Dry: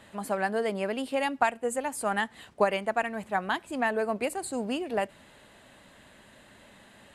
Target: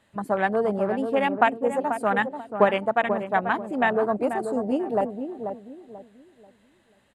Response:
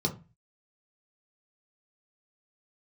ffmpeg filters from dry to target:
-filter_complex "[0:a]afwtdn=0.0282,asplit=2[s0][s1];[s1]adelay=487,lowpass=f=860:p=1,volume=0.501,asplit=2[s2][s3];[s3]adelay=487,lowpass=f=860:p=1,volume=0.34,asplit=2[s4][s5];[s5]adelay=487,lowpass=f=860:p=1,volume=0.34,asplit=2[s6][s7];[s7]adelay=487,lowpass=f=860:p=1,volume=0.34[s8];[s0][s2][s4][s6][s8]amix=inputs=5:normalize=0,volume=1.88"

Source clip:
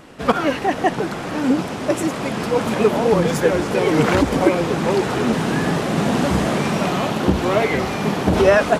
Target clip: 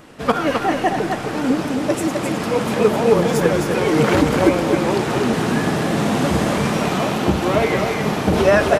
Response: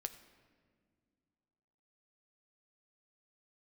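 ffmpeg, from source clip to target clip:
-filter_complex "[0:a]aecho=1:1:261:0.562,asplit=2[s0][s1];[1:a]atrim=start_sample=2205,highshelf=f=11000:g=6.5[s2];[s1][s2]afir=irnorm=-1:irlink=0,volume=3.16[s3];[s0][s3]amix=inputs=2:normalize=0,volume=0.282"

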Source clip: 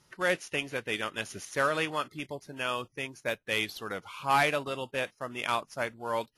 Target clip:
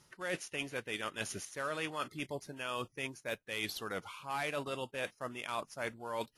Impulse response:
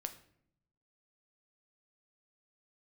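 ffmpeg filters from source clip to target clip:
-af "equalizer=f=8900:t=o:w=0.79:g=3.5,areverse,acompressor=threshold=0.0158:ratio=6,areverse,volume=1.12"

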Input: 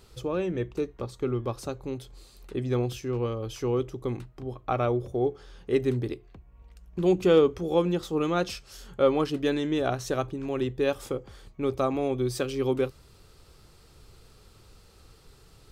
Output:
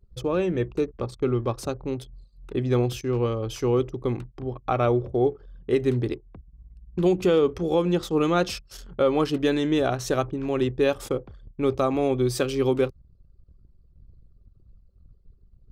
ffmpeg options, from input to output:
-af "anlmdn=0.0251,alimiter=limit=0.15:level=0:latency=1:release=161,volume=1.68"

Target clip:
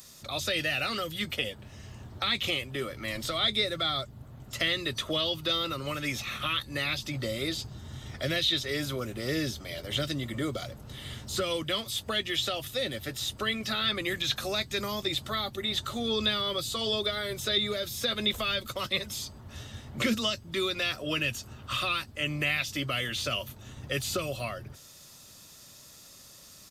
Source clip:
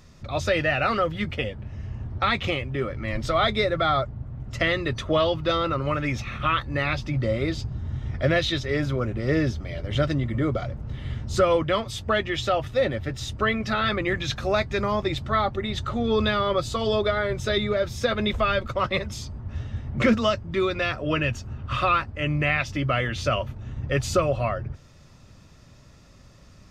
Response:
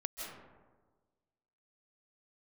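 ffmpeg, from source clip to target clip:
-filter_complex "[0:a]aresample=32000,aresample=44100,aemphasis=mode=production:type=bsi,acrossover=split=360|2200[s0][s1][s2];[s1]acompressor=threshold=0.02:ratio=6[s3];[s0][s3][s2]amix=inputs=3:normalize=0,aexciter=amount=1.8:drive=6.5:freq=3200,acrossover=split=3500[s4][s5];[s5]acompressor=threshold=0.0178:ratio=4:attack=1:release=60[s6];[s4][s6]amix=inputs=2:normalize=0,volume=0.794"

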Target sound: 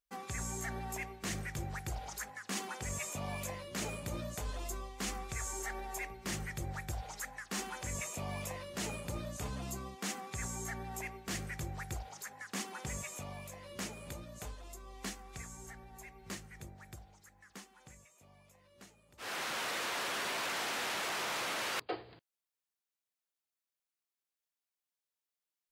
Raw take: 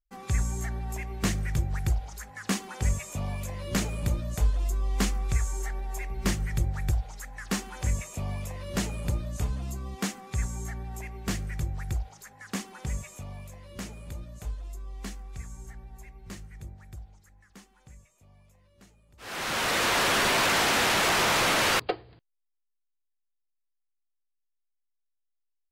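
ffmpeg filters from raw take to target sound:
-af "highpass=f=300:p=1,areverse,acompressor=threshold=0.0126:ratio=12,areverse,volume=1.33"

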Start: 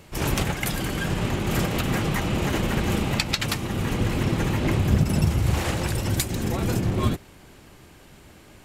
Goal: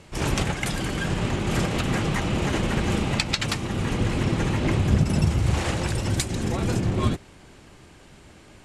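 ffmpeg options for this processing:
-af "lowpass=f=9800:w=0.5412,lowpass=f=9800:w=1.3066"

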